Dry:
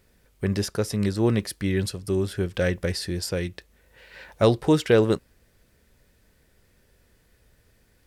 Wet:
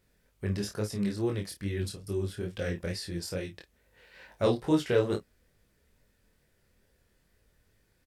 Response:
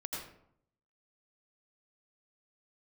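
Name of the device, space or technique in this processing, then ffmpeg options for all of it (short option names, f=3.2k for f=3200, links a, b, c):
double-tracked vocal: -filter_complex "[0:a]asplit=2[a][b];[b]adelay=29,volume=-8dB[c];[a][c]amix=inputs=2:normalize=0,flanger=delay=19:depth=6.1:speed=2.3,asettb=1/sr,asplit=3[d][e][f];[d]atrim=end=1.174[g];[e]atrim=start=1.17:end=2.75,asetpts=PTS-STARTPTS,afade=t=in:d=0.004:c=qsin,afade=t=out:st=1.576:d=0.004:c=qsin,equalizer=f=1k:w=0.51:g=-3[h];[f]atrim=start=2.746[i];[g][h]acrossfade=d=0.004:c1=hsin:c2=qsin[j];[j][i]acrossfade=d=0.004:c1=qsin:c2=hsin,volume=-5dB"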